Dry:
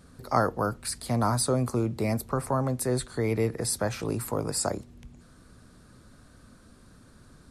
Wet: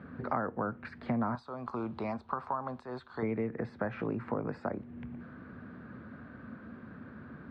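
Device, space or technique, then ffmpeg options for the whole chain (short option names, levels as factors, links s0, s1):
bass amplifier: -filter_complex "[0:a]asettb=1/sr,asplit=3[s0][s1][s2];[s0]atrim=end=1.354[s3];[s1]atrim=start=1.35:end=3.23,asetpts=PTS-STARTPTS,afade=t=in:d=0.004:c=qsin,afade=t=out:st=1.876:d=0.004:c=qsin,equalizer=f=125:t=o:w=1:g=-12,equalizer=f=250:t=o:w=1:g=-9,equalizer=f=500:t=o:w=1:g=-8,equalizer=f=1000:t=o:w=1:g=8,equalizer=f=2000:t=o:w=1:g=-12,equalizer=f=4000:t=o:w=1:g=10,equalizer=f=8000:t=o:w=1:g=9[s4];[s2]atrim=start=3.226[s5];[s3][s4]acrossfade=d=0.004:c1=hsin:c2=qsin[s6];[s6][s5]acrossfade=d=0.004:c1=qsin:c2=hsin,acompressor=threshold=0.0126:ratio=5,highpass=f=85:w=0.5412,highpass=f=85:w=1.3066,equalizer=f=110:t=q:w=4:g=-4,equalizer=f=230:t=q:w=4:g=6,equalizer=f=1600:t=q:w=4:g=4,lowpass=f=2300:w=0.5412,lowpass=f=2300:w=1.3066,volume=2"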